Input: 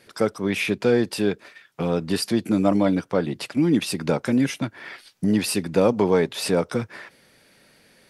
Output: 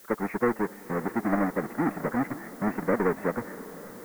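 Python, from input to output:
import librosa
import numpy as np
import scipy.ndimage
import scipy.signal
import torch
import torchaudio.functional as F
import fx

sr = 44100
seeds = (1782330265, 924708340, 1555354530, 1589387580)

y = fx.halfwave_hold(x, sr)
y = scipy.signal.sosfilt(scipy.signal.cheby1(5, 1.0, 2000.0, 'lowpass', fs=sr, output='sos'), y)
y = fx.peak_eq(y, sr, hz=81.0, db=-13.5, octaves=1.8)
y = fx.dmg_noise_colour(y, sr, seeds[0], colour='blue', level_db=-45.0)
y = fx.stretch_vocoder(y, sr, factor=0.5)
y = fx.echo_diffused(y, sr, ms=549, feedback_pct=63, wet_db=-16)
y = y * 10.0 ** (-6.0 / 20.0)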